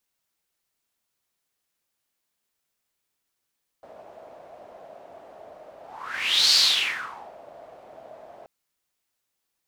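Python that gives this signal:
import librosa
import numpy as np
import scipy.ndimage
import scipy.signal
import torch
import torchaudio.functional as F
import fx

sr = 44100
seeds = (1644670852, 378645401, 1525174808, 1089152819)

y = fx.whoosh(sr, seeds[0], length_s=4.63, peak_s=2.71, rise_s=0.78, fall_s=0.86, ends_hz=640.0, peak_hz=4500.0, q=5.7, swell_db=28.0)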